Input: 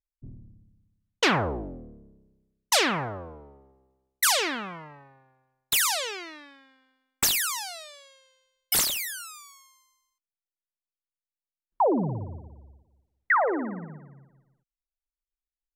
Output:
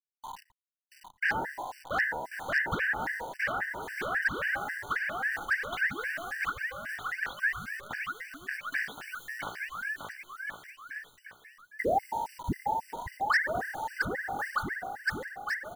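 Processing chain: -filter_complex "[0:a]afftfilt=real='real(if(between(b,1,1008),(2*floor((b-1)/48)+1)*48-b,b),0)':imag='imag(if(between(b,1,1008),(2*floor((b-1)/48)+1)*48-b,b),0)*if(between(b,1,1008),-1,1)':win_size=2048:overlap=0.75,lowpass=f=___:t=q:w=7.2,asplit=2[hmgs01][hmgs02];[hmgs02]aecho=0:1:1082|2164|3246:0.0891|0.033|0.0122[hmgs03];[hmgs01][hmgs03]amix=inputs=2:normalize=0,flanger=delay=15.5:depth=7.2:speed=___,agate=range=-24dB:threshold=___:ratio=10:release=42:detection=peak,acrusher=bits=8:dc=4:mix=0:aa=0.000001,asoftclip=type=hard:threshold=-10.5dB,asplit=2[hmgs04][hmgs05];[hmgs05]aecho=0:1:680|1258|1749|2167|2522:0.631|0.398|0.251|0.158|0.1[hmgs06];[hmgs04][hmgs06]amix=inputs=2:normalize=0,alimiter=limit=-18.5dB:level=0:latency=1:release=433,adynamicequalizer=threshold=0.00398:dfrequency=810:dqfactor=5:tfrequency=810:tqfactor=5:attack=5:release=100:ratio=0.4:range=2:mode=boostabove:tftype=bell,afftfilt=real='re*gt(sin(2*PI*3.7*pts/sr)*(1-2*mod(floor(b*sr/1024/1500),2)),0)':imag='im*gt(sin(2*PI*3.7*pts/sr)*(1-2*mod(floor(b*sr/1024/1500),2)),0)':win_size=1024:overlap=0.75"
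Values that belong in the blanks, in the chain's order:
1700, 2.8, -47dB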